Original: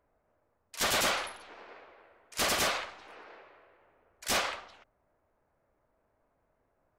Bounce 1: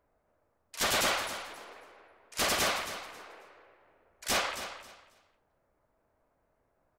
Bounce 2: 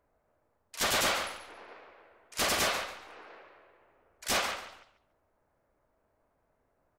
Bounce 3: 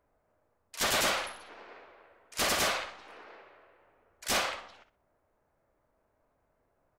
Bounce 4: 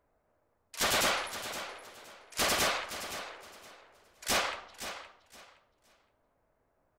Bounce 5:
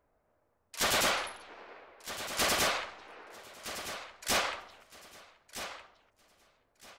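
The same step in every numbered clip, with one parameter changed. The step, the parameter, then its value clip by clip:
feedback echo, time: 271, 141, 61, 518, 1265 ms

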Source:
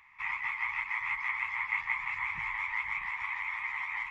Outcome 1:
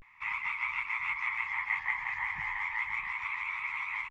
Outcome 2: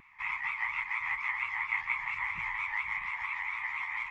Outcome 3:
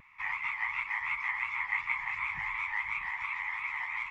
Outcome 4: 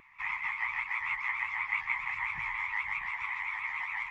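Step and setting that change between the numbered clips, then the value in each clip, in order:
vibrato, rate: 0.34, 4.3, 2.8, 7.5 Hz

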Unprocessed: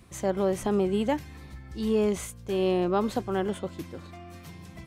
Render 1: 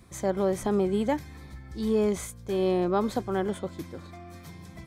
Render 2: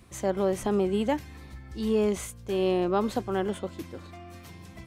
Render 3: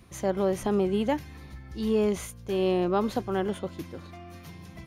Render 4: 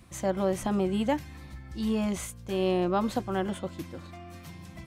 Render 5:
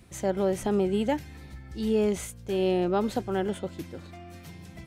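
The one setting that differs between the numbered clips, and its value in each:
notch, frequency: 2800, 160, 7900, 420, 1100 Hz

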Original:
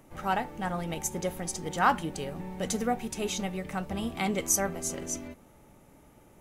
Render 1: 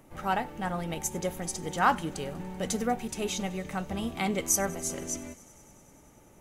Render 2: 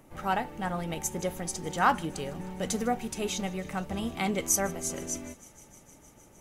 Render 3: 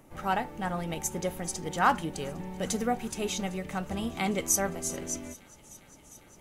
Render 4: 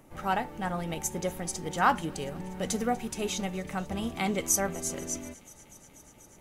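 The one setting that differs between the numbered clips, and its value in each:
thin delay, time: 96, 154, 403, 243 ms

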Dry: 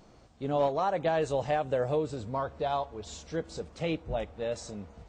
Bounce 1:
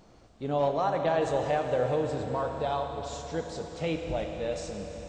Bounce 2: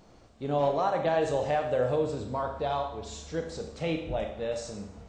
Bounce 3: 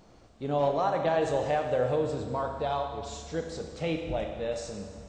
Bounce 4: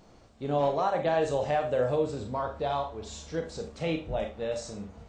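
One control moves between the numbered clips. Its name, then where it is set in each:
Schroeder reverb, RT60: 4.4, 0.72, 1.6, 0.31 s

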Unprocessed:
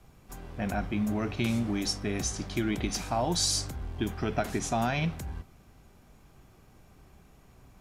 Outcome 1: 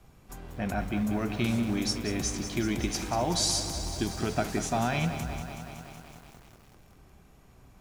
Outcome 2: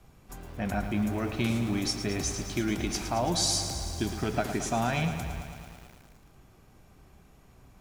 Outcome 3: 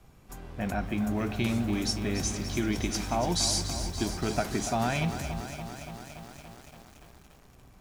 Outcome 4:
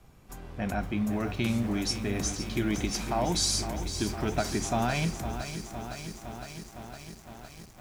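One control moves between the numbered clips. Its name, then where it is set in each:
lo-fi delay, time: 0.187, 0.111, 0.286, 0.51 s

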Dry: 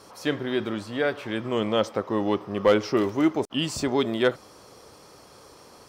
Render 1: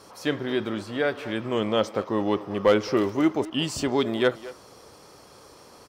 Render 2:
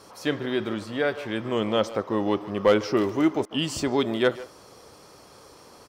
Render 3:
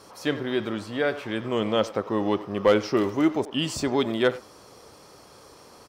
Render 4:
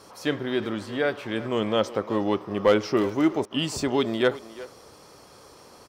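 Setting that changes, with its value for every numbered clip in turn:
speakerphone echo, time: 220, 150, 90, 360 ms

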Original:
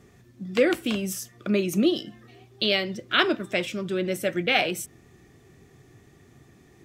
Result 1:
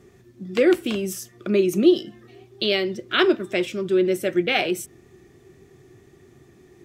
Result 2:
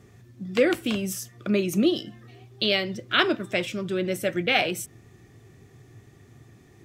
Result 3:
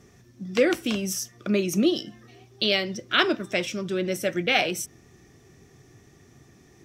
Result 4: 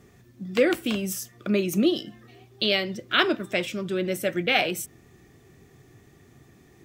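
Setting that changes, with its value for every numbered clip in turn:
bell, frequency: 370, 110, 5700, 16000 Hz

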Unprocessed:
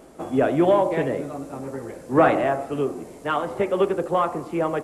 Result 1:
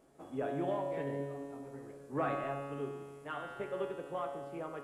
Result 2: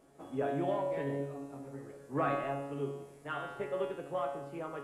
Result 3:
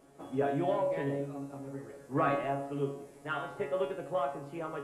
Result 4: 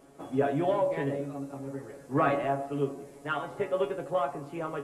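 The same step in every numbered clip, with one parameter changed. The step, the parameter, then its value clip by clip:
resonator, decay: 2, 0.91, 0.43, 0.18 s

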